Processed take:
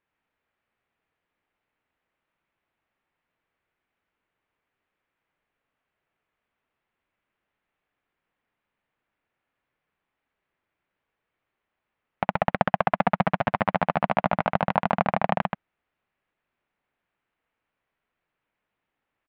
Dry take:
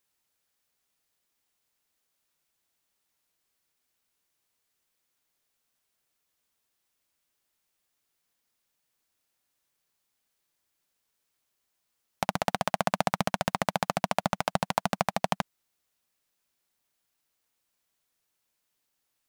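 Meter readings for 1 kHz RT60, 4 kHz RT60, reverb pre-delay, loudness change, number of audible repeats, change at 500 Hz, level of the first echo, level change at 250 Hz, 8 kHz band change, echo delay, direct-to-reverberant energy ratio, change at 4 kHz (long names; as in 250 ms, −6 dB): no reverb audible, no reverb audible, no reverb audible, +4.5 dB, 1, +5.0 dB, −3.5 dB, +5.0 dB, below −30 dB, 129 ms, no reverb audible, −5.5 dB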